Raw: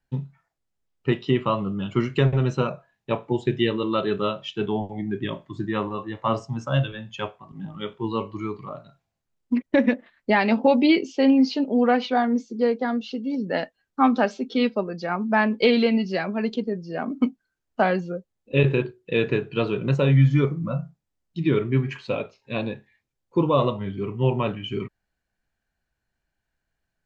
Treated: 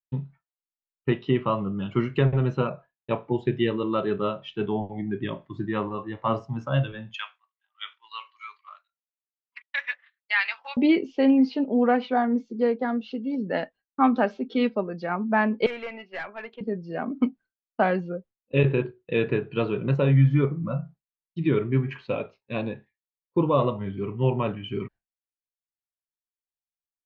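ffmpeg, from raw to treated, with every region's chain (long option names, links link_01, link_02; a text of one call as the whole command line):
ffmpeg -i in.wav -filter_complex "[0:a]asettb=1/sr,asplit=3[link_01][link_02][link_03];[link_01]atrim=end=7.144[link_04];[link_02]atrim=start=7.14:end=10.77,asetpts=PTS-STARTPTS,afade=type=in:duration=0.004:curve=qsin,afade=type=out:start_time=3.626:duration=0.004:curve=qsin,highpass=frequency=1300:width=0.5412,highpass=frequency=1300:width=1.3066,highshelf=frequency=2100:gain=9[link_05];[link_03]atrim=start=10.766[link_06];[link_04][link_05]acrossfade=duration=0.004:curve1=hsin:curve2=qsin[link_07];[link_07][link_06]acrossfade=duration=0.004:curve1=qsin:curve2=hsin,asettb=1/sr,asplit=3[link_08][link_09][link_10];[link_08]atrim=end=15.664[link_11];[link_09]atrim=start=15.66:end=16.61,asetpts=PTS-STARTPTS,afade=type=in:duration=0.004:curve=qsin,afade=type=out:start_time=0.946:duration=0.004:curve=qsin,highpass=770,highshelf=frequency=3300:width_type=q:width=1.5:gain=-12.5,aeval=exprs='(tanh(20*val(0)+0.25)-tanh(0.25))/20':channel_layout=same[link_12];[link_10]atrim=start=16.606[link_13];[link_11][link_12]acrossfade=duration=0.004:curve1=hsin:curve2=qsin[link_14];[link_14][link_13]acrossfade=duration=0.004:curve1=qsin:curve2=hsin,lowpass=3200,agate=range=-33dB:threshold=-40dB:ratio=3:detection=peak,adynamicequalizer=threshold=0.0126:dfrequency=2100:dqfactor=0.7:tfrequency=2100:tqfactor=0.7:attack=5:release=100:ratio=0.375:range=3:mode=cutabove:tftype=highshelf,volume=-1.5dB" out.wav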